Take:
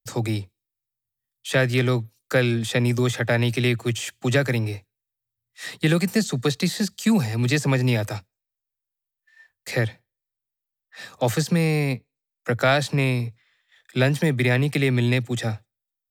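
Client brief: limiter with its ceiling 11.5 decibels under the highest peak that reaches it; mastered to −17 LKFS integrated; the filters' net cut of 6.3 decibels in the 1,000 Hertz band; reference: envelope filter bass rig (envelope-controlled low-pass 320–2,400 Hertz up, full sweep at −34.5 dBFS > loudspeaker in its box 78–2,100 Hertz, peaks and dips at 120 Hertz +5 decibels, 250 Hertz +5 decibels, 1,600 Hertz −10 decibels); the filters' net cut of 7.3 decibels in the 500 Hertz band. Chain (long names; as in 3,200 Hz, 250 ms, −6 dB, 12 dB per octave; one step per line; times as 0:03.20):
parametric band 500 Hz −9 dB
parametric band 1,000 Hz −3.5 dB
brickwall limiter −20 dBFS
envelope-controlled low-pass 320–2,400 Hz up, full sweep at −34.5 dBFS
loudspeaker in its box 78–2,100 Hz, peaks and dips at 120 Hz +5 dB, 250 Hz +5 dB, 1,600 Hz −10 dB
level +10 dB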